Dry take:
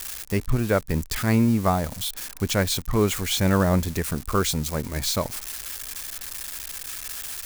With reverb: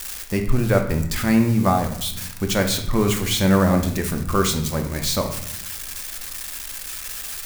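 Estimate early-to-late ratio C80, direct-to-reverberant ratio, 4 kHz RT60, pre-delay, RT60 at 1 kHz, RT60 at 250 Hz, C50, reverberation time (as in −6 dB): 11.5 dB, 4.0 dB, 0.60 s, 3 ms, 0.80 s, 1.3 s, 8.0 dB, 0.80 s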